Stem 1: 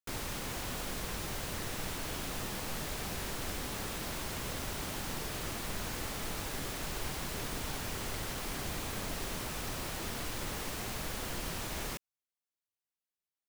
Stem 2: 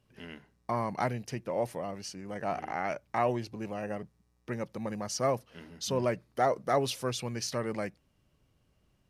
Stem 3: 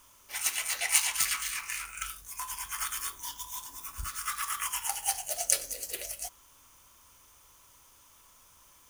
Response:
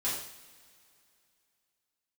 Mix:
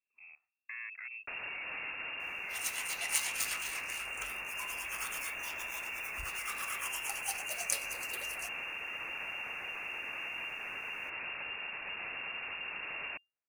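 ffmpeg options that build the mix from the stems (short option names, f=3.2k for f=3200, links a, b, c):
-filter_complex "[0:a]adelay=1200,volume=2dB[a];[1:a]alimiter=limit=-24dB:level=0:latency=1:release=197,afwtdn=0.0126,volume=-7dB[b];[2:a]adelay=2200,volume=-7.5dB[c];[a][b]amix=inputs=2:normalize=0,lowpass=f=2.4k:t=q:w=0.5098,lowpass=f=2.4k:t=q:w=0.6013,lowpass=f=2.4k:t=q:w=0.9,lowpass=f=2.4k:t=q:w=2.563,afreqshift=-2800,alimiter=level_in=8dB:limit=-24dB:level=0:latency=1:release=90,volume=-8dB,volume=0dB[d];[c][d]amix=inputs=2:normalize=0"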